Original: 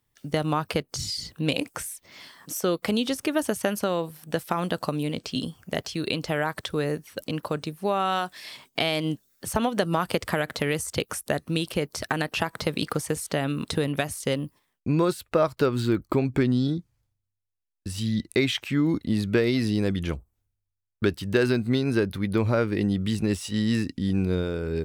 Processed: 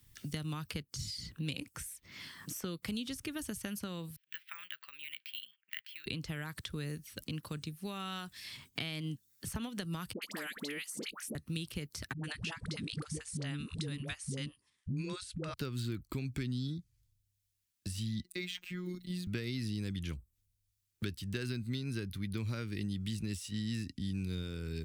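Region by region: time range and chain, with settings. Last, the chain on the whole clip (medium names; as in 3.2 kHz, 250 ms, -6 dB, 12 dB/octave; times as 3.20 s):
4.16–6.06 s: gate -48 dBFS, range -17 dB + Butterworth band-pass 2.4 kHz, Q 1.5 + careless resampling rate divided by 2×, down none, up zero stuff
10.13–11.35 s: steep high-pass 210 Hz 48 dB/octave + upward compressor, threshold -37 dBFS + phase dispersion highs, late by 92 ms, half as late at 970 Hz
12.13–15.54 s: elliptic low-pass 10 kHz + phase dispersion highs, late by 107 ms, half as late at 400 Hz
18.23–19.27 s: peaking EQ 77 Hz -12 dB 1.8 oct + hum notches 60/120/180/240/300 Hz + robot voice 180 Hz
whole clip: amplifier tone stack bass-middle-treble 6-0-2; three bands compressed up and down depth 70%; trim +5.5 dB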